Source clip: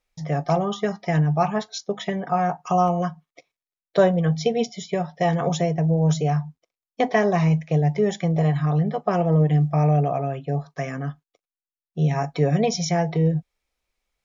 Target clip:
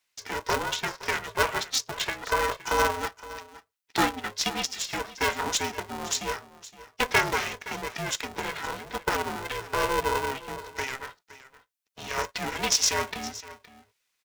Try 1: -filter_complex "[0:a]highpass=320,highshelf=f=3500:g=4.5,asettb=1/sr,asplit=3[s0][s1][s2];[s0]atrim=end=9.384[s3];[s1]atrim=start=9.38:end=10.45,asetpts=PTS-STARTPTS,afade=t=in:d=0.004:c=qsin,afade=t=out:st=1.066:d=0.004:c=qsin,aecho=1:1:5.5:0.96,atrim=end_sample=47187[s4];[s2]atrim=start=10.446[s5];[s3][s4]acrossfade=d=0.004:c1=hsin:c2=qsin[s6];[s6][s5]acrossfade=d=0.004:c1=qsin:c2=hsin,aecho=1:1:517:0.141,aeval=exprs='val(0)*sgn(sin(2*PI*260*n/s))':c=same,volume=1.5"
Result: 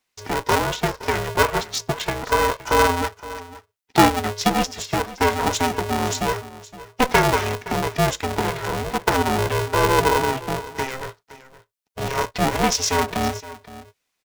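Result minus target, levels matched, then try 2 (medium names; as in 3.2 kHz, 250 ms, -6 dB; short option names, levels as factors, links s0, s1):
250 Hz band +5.5 dB
-filter_complex "[0:a]highpass=1100,highshelf=f=3500:g=4.5,asettb=1/sr,asplit=3[s0][s1][s2];[s0]atrim=end=9.384[s3];[s1]atrim=start=9.38:end=10.45,asetpts=PTS-STARTPTS,afade=t=in:d=0.004:c=qsin,afade=t=out:st=1.066:d=0.004:c=qsin,aecho=1:1:5.5:0.96,atrim=end_sample=47187[s4];[s2]atrim=start=10.446[s5];[s3][s4]acrossfade=d=0.004:c1=hsin:c2=qsin[s6];[s6][s5]acrossfade=d=0.004:c1=qsin:c2=hsin,aecho=1:1:517:0.141,aeval=exprs='val(0)*sgn(sin(2*PI*260*n/s))':c=same,volume=1.5"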